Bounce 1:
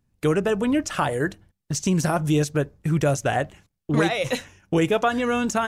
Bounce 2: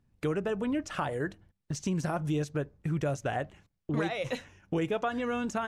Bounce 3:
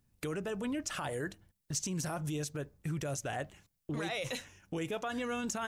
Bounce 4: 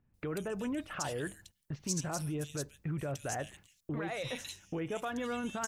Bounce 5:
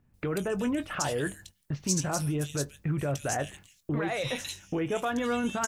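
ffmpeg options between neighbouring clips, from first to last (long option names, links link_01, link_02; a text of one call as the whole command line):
ffmpeg -i in.wav -af "lowpass=frequency=3600:poles=1,acompressor=threshold=-44dB:ratio=1.5" out.wav
ffmpeg -i in.wav -af "alimiter=level_in=2dB:limit=-24dB:level=0:latency=1:release=12,volume=-2dB,crystalizer=i=3:c=0,volume=-3.5dB" out.wav
ffmpeg -i in.wav -filter_complex "[0:a]acrossover=split=2700[link_01][link_02];[link_02]adelay=140[link_03];[link_01][link_03]amix=inputs=2:normalize=0" out.wav
ffmpeg -i in.wav -filter_complex "[0:a]asplit=2[link_01][link_02];[link_02]adelay=21,volume=-13dB[link_03];[link_01][link_03]amix=inputs=2:normalize=0,volume=6.5dB" out.wav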